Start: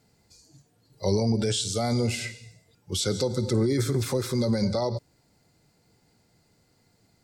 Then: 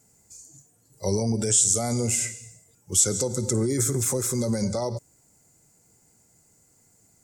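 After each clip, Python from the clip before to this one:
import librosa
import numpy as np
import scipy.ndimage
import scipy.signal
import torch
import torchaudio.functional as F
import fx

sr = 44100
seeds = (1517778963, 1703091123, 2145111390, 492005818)

y = fx.high_shelf_res(x, sr, hz=5500.0, db=9.5, q=3.0)
y = y * 10.0 ** (-1.0 / 20.0)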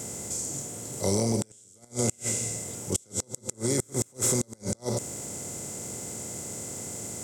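y = fx.bin_compress(x, sr, power=0.4)
y = fx.gate_flip(y, sr, shuts_db=-7.0, range_db=-33)
y = y * 10.0 ** (-5.0 / 20.0)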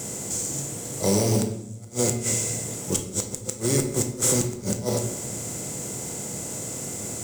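y = fx.mod_noise(x, sr, seeds[0], snr_db=16)
y = fx.room_shoebox(y, sr, seeds[1], volume_m3=270.0, walls='mixed', distance_m=0.67)
y = y * 10.0 ** (3.0 / 20.0)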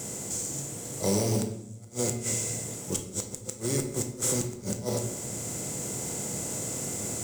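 y = fx.rider(x, sr, range_db=10, speed_s=2.0)
y = y * 10.0 ** (-5.5 / 20.0)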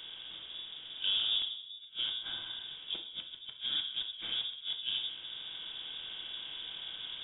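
y = fx.freq_invert(x, sr, carrier_hz=3600)
y = y * 10.0 ** (-5.5 / 20.0)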